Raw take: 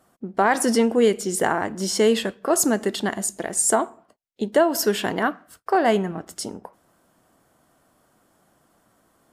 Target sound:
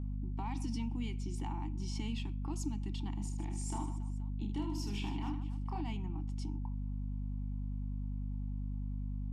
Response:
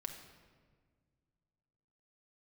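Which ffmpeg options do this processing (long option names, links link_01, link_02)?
-filter_complex "[0:a]asplit=3[link_01][link_02][link_03];[link_01]bandpass=frequency=300:width_type=q:width=8,volume=0dB[link_04];[link_02]bandpass=frequency=870:width_type=q:width=8,volume=-6dB[link_05];[link_03]bandpass=frequency=2240:width_type=q:width=8,volume=-9dB[link_06];[link_04][link_05][link_06]amix=inputs=3:normalize=0,equalizer=frequency=460:width_type=o:width=0.84:gain=-14.5,acrossover=split=150|3000[link_07][link_08][link_09];[link_08]acompressor=threshold=-55dB:ratio=2.5[link_10];[link_07][link_10][link_09]amix=inputs=3:normalize=0,equalizer=frequency=5700:width_type=o:width=0.39:gain=4,bandreject=frequency=2100:width=6.2,asettb=1/sr,asplit=3[link_11][link_12][link_13];[link_11]atrim=end=3.144[link_14];[link_12]atrim=start=3.14:end=5.81,asetpts=PTS-STARTPTS,afade=type=in:duration=0.004:curve=qsin,afade=type=out:start_time=2.666:duration=0.004:curve=qsin,aecho=1:1:30|78|154.8|277.7|474.3:0.631|0.398|0.251|0.158|0.1,atrim=end_sample=117747[link_15];[link_13]atrim=start=5.806[link_16];[link_14][link_15]acrossfade=duration=0.004:curve1=hsin:curve2=qsin[link_17];[link_17][link_16]acrossfade=duration=0.004:curve1=qsin:curve2=hsin,aeval=exprs='val(0)+0.00794*(sin(2*PI*50*n/s)+sin(2*PI*2*50*n/s)/2+sin(2*PI*3*50*n/s)/3+sin(2*PI*4*50*n/s)/4+sin(2*PI*5*50*n/s)/5)':channel_layout=same,lowpass=12000,volume=5.5dB"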